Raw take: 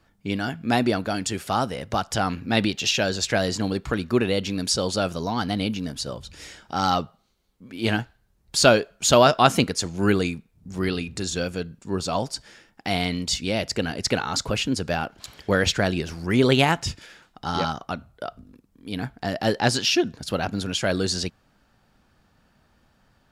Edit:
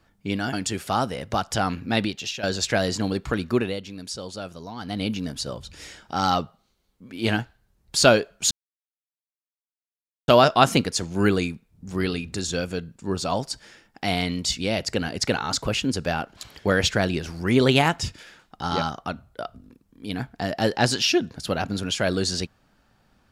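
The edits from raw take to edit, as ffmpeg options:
-filter_complex "[0:a]asplit=6[s0][s1][s2][s3][s4][s5];[s0]atrim=end=0.532[s6];[s1]atrim=start=1.128:end=3.03,asetpts=PTS-STARTPTS,afade=t=out:st=1.312:d=0.59:silence=0.211349[s7];[s2]atrim=start=3.03:end=4.42,asetpts=PTS-STARTPTS,afade=t=in:d=0.004:c=hsin:silence=0.211349,afade=t=out:st=1.08:d=0.31:silence=0.298538[s8];[s3]atrim=start=4.42:end=5.39,asetpts=PTS-STARTPTS,volume=0.299[s9];[s4]atrim=start=5.39:end=9.11,asetpts=PTS-STARTPTS,afade=t=in:d=0.31:silence=0.298538,afade=t=out:st=3.716:d=0.004:c=hsin,apad=pad_dur=1.77[s10];[s5]atrim=start=9.11,asetpts=PTS-STARTPTS,afade=t=in:d=0.004:c=hsin[s11];[s7][s8][s9][s10][s11]concat=n=5:v=0:a=1[s12];[s6][s12]acrossfade=d=0.004:c1=hsin:c2=hsin"

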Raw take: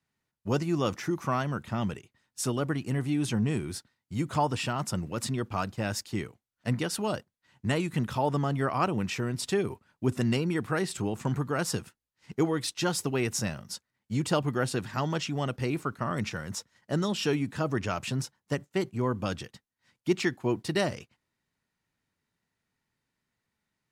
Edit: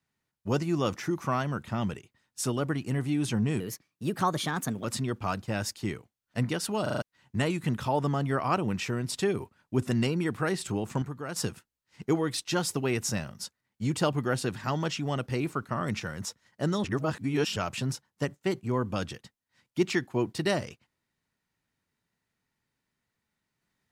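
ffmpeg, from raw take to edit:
-filter_complex "[0:a]asplit=12[s0][s1][s2][s3][s4][s5][s6][s7][s8][s9][s10][s11];[s0]atrim=end=3.604[s12];[s1]atrim=start=3.6:end=5.14,asetpts=PTS-STARTPTS,asetrate=54684,aresample=44100,atrim=end_sample=54769,asetpts=PTS-STARTPTS[s13];[s2]atrim=start=5.136:end=7.162[s14];[s3]atrim=start=7.118:end=7.162[s15];[s4]atrim=start=7.118:end=7.162[s16];[s5]atrim=start=7.118:end=7.162[s17];[s6]atrim=start=7.118:end=7.162[s18];[s7]atrim=start=7.318:end=11.322[s19];[s8]atrim=start=11.318:end=11.662,asetpts=PTS-STARTPTS,volume=0.422[s20];[s9]atrim=start=11.658:end=17.142[s21];[s10]atrim=start=17.138:end=17.862,asetpts=PTS-STARTPTS,areverse[s22];[s11]atrim=start=17.858[s23];[s12][s13]acrossfade=d=0.004:c1=hsin:c2=hsin[s24];[s24][s14]acrossfade=d=0.004:c1=hsin:c2=hsin[s25];[s25][s15]acrossfade=d=0.004:c1=hsin:c2=hsin[s26];[s26][s16]acrossfade=d=0.004:c1=hsin:c2=hsin[s27];[s27][s17]acrossfade=d=0.004:c1=hsin:c2=hsin[s28];[s28][s18]acrossfade=d=0.004:c1=hsin:c2=hsin[s29];[s29][s19]acrossfade=d=0.004:c1=hsin:c2=hsin[s30];[s30][s20]acrossfade=d=0.004:c1=hsin:c2=hsin[s31];[s31][s21]acrossfade=d=0.004:c1=hsin:c2=hsin[s32];[s32][s22]acrossfade=d=0.004:c1=hsin:c2=hsin[s33];[s33][s23]acrossfade=d=0.004:c1=hsin:c2=hsin"

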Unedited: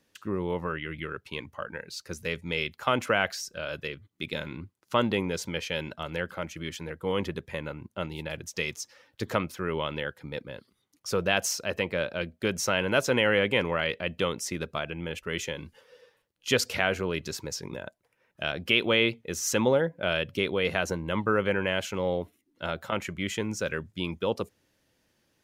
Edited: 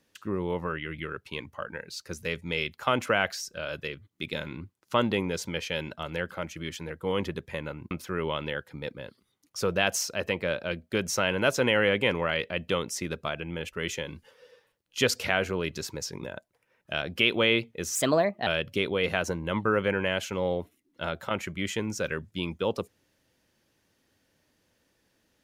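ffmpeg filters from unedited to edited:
-filter_complex "[0:a]asplit=4[s0][s1][s2][s3];[s0]atrim=end=7.912[s4];[s1]atrim=start=9.408:end=19.454[s5];[s2]atrim=start=19.45:end=20.08,asetpts=PTS-STARTPTS,asetrate=53802,aresample=44100[s6];[s3]atrim=start=20.076[s7];[s4][s5]acrossfade=d=0.004:c1=hsin:c2=hsin[s8];[s8][s6]acrossfade=d=0.004:c1=hsin:c2=hsin[s9];[s9][s7]acrossfade=d=0.004:c1=hsin:c2=hsin"

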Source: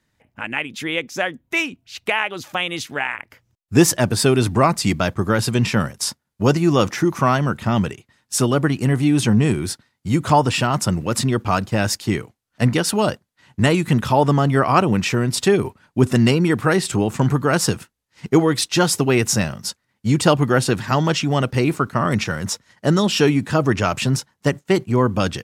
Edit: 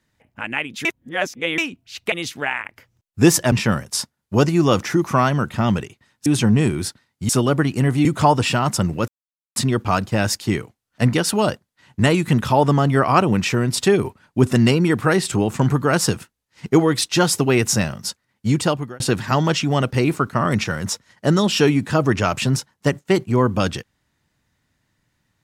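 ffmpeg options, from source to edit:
-filter_complex "[0:a]asplit=10[s0][s1][s2][s3][s4][s5][s6][s7][s8][s9];[s0]atrim=end=0.852[s10];[s1]atrim=start=0.848:end=1.582,asetpts=PTS-STARTPTS,areverse[s11];[s2]atrim=start=1.578:end=2.122[s12];[s3]atrim=start=2.658:end=4.062[s13];[s4]atrim=start=5.598:end=8.342[s14];[s5]atrim=start=9.098:end=10.132[s15];[s6]atrim=start=8.338:end=9.102[s16];[s7]atrim=start=10.128:end=11.16,asetpts=PTS-STARTPTS,afade=t=out:st=1.028:d=0.004:c=hsin,apad=pad_dur=0.48[s17];[s8]atrim=start=11.16:end=20.6,asetpts=PTS-STARTPTS,afade=t=in:d=0.004:c=hsin,afade=t=out:st=8.91:d=0.53[s18];[s9]atrim=start=20.6,asetpts=PTS-STARTPTS,afade=t=in:d=0.004:c=hsin[s19];[s10][s11]acrossfade=d=0.004:c1=hsin:c2=hsin[s20];[s20][s12]acrossfade=d=0.004:c1=hsin:c2=hsin[s21];[s21][s13]acrossfade=d=0.004:c1=hsin:c2=hsin[s22];[s22][s14]acrossfade=d=0.004:c1=hsin:c2=hsin[s23];[s23][s15]acrossfade=d=0.004:c1=hsin:c2=hsin[s24];[s24][s16]acrossfade=d=0.004:c1=hsin:c2=hsin[s25];[s17][s18][s19]concat=n=3:v=0:a=1[s26];[s25][s26]acrossfade=d=0.004:c1=hsin:c2=hsin"

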